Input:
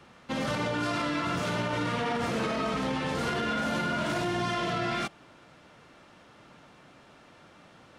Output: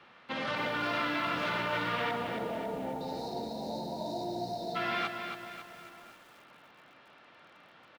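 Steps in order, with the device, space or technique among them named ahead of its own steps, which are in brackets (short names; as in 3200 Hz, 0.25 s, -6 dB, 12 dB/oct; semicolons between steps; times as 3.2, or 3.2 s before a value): shout across a valley (air absorption 360 m; outdoor echo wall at 180 m, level -20 dB); 2.11–3.01 LPF 1200 Hz 12 dB/oct; 2.17–4.75 spectral delete 970–3600 Hz; tilt +4 dB/oct; lo-fi delay 0.274 s, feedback 55%, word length 9-bit, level -6.5 dB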